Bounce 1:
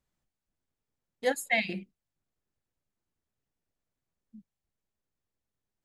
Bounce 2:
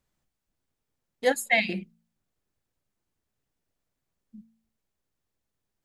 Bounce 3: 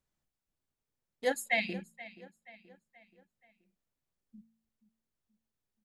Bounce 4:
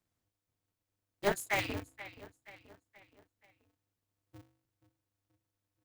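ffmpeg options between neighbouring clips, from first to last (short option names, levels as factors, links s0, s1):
-af "bandreject=f=56.1:t=h:w=4,bandreject=f=112.2:t=h:w=4,bandreject=f=168.3:t=h:w=4,bandreject=f=224.4:t=h:w=4,volume=1.68"
-filter_complex "[0:a]asplit=2[s0][s1];[s1]adelay=478,lowpass=f=4600:p=1,volume=0.141,asplit=2[s2][s3];[s3]adelay=478,lowpass=f=4600:p=1,volume=0.49,asplit=2[s4][s5];[s5]adelay=478,lowpass=f=4600:p=1,volume=0.49,asplit=2[s6][s7];[s7]adelay=478,lowpass=f=4600:p=1,volume=0.49[s8];[s0][s2][s4][s6][s8]amix=inputs=5:normalize=0,volume=0.447"
-filter_complex "[0:a]acrossover=split=170|1600[s0][s1][s2];[s2]asoftclip=type=tanh:threshold=0.0224[s3];[s0][s1][s3]amix=inputs=3:normalize=0,aeval=exprs='val(0)*sgn(sin(2*PI*100*n/s))':c=same"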